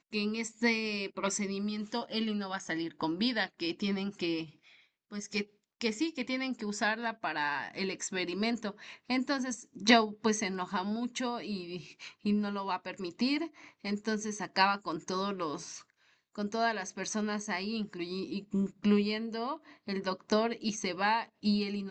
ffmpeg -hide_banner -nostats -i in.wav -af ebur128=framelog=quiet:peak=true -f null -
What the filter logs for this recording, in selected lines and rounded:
Integrated loudness:
  I:         -33.0 LUFS
  Threshold: -43.3 LUFS
Loudness range:
  LRA:         4.3 LU
  Threshold: -53.5 LUFS
  LRA low:   -35.4 LUFS
  LRA high:  -31.2 LUFS
True peak:
  Peak:      -10.2 dBFS